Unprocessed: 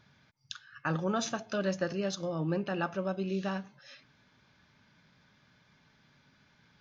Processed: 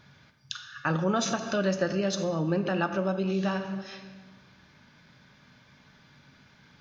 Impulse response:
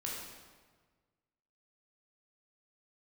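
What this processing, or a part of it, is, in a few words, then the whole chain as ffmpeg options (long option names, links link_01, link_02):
ducked reverb: -filter_complex "[0:a]asplit=3[link_01][link_02][link_03];[1:a]atrim=start_sample=2205[link_04];[link_02][link_04]afir=irnorm=-1:irlink=0[link_05];[link_03]apad=whole_len=299954[link_06];[link_05][link_06]sidechaincompress=threshold=-35dB:ratio=8:attack=7.6:release=173,volume=-2dB[link_07];[link_01][link_07]amix=inputs=2:normalize=0,volume=3dB"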